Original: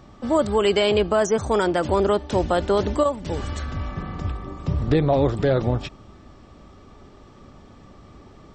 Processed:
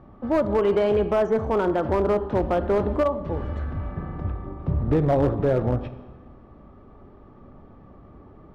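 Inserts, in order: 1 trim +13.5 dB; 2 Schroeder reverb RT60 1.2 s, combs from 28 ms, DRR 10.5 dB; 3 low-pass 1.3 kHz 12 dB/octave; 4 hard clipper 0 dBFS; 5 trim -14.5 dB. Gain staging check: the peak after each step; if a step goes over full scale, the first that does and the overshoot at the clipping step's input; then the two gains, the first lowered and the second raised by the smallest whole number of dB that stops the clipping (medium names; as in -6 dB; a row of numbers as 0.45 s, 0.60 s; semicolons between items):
+5.0 dBFS, +6.0 dBFS, +5.0 dBFS, 0.0 dBFS, -14.5 dBFS; step 1, 5.0 dB; step 1 +8.5 dB, step 5 -9.5 dB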